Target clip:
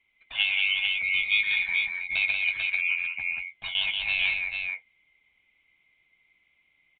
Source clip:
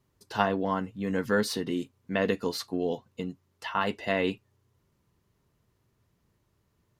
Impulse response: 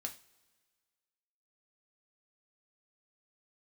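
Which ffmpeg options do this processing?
-filter_complex "[0:a]afftfilt=real='real(if(lt(b,920),b+92*(1-2*mod(floor(b/92),2)),b),0)':imag='imag(if(lt(b,920),b+92*(1-2*mod(floor(b/92),2)),b),0)':win_size=2048:overlap=0.75,lowshelf=f=160:g=7.5,acrossover=split=1400[a][b];[a]acompressor=threshold=-53dB:ratio=5[c];[c][b]amix=inputs=2:normalize=0,asoftclip=type=tanh:threshold=-12dB,asplit=2[d][e];[e]aecho=0:1:126|185|443:0.299|0.631|0.562[f];[d][f]amix=inputs=2:normalize=0,aresample=8000,aresample=44100,volume=1.5dB"

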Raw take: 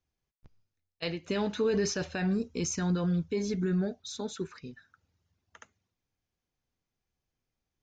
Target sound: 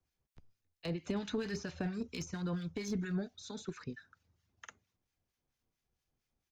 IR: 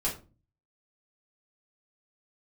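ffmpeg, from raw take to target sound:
-filter_complex "[0:a]acrossover=split=350|940[a][b][c];[b]acompressor=threshold=-47dB:ratio=6[d];[a][d][c]amix=inputs=3:normalize=0,atempo=1.2,acrossover=split=460|1100[e][f][g];[e]acompressor=threshold=-36dB:ratio=4[h];[f]acompressor=threshold=-46dB:ratio=4[i];[g]acompressor=threshold=-45dB:ratio=4[j];[h][i][j]amix=inputs=3:normalize=0,aeval=exprs='clip(val(0),-1,0.0237)':c=same,acrossover=split=1200[k][l];[k]aeval=exprs='val(0)*(1-0.7/2+0.7/2*cos(2*PI*4.4*n/s))':c=same[m];[l]aeval=exprs='val(0)*(1-0.7/2-0.7/2*cos(2*PI*4.4*n/s))':c=same[n];[m][n]amix=inputs=2:normalize=0,volume=3.5dB"

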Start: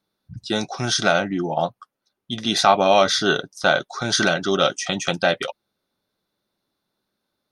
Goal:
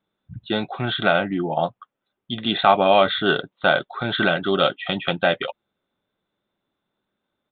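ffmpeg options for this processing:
-af "aresample=8000,aresample=44100"

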